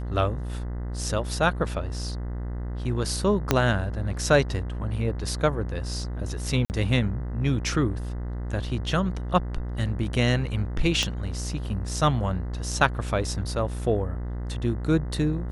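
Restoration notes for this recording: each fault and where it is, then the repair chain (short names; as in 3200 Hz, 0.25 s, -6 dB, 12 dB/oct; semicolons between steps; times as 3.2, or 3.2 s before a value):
buzz 60 Hz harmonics 34 -31 dBFS
3.51 pop -4 dBFS
6.65–6.7 gap 49 ms
11.03 pop -12 dBFS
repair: de-click; de-hum 60 Hz, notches 34; interpolate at 6.65, 49 ms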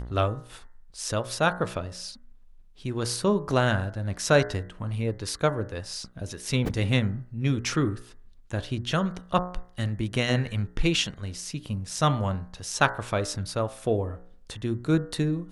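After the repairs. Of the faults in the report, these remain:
3.51 pop
11.03 pop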